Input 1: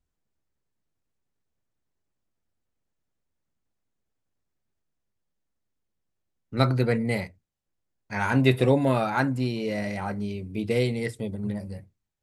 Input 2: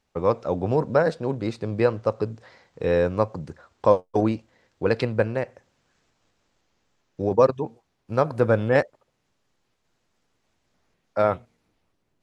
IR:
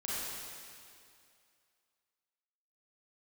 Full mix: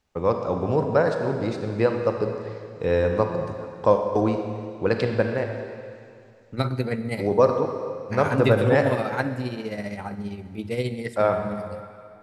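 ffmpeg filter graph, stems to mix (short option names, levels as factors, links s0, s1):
-filter_complex "[0:a]tremolo=f=15:d=0.63,volume=0.891,asplit=2[s0][s1];[s1]volume=0.168[s2];[1:a]volume=0.708,asplit=2[s3][s4];[s4]volume=0.531[s5];[2:a]atrim=start_sample=2205[s6];[s2][s5]amix=inputs=2:normalize=0[s7];[s7][s6]afir=irnorm=-1:irlink=0[s8];[s0][s3][s8]amix=inputs=3:normalize=0"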